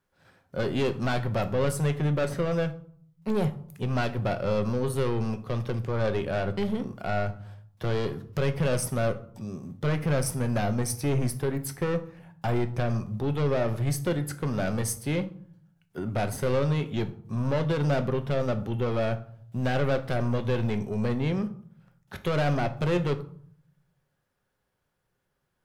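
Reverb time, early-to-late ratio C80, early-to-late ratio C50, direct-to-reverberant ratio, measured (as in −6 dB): 0.60 s, 19.0 dB, 15.0 dB, 8.5 dB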